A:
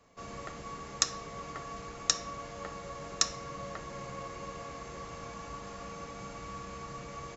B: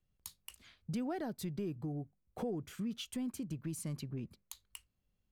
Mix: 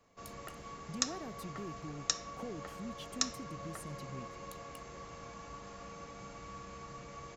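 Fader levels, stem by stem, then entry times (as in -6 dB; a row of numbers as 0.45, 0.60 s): -5.0, -6.0 dB; 0.00, 0.00 s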